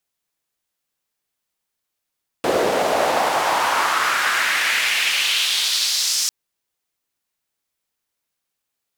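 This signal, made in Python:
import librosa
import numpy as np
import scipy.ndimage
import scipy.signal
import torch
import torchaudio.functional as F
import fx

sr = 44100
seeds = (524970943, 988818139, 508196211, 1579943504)

y = fx.riser_noise(sr, seeds[0], length_s=3.85, colour='white', kind='bandpass', start_hz=430.0, end_hz=5800.0, q=2.3, swell_db=-12.0, law='exponential')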